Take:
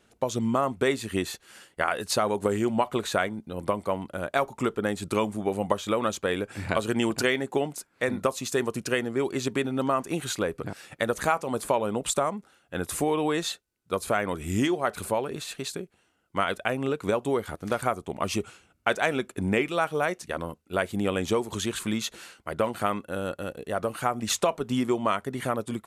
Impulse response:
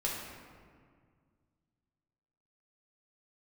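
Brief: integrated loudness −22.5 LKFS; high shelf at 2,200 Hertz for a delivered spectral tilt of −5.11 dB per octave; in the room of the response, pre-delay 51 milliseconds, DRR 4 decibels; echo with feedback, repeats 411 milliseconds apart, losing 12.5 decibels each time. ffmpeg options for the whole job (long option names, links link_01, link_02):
-filter_complex "[0:a]highshelf=frequency=2200:gain=-7,aecho=1:1:411|822|1233:0.237|0.0569|0.0137,asplit=2[link_01][link_02];[1:a]atrim=start_sample=2205,adelay=51[link_03];[link_02][link_03]afir=irnorm=-1:irlink=0,volume=-9dB[link_04];[link_01][link_04]amix=inputs=2:normalize=0,volume=5dB"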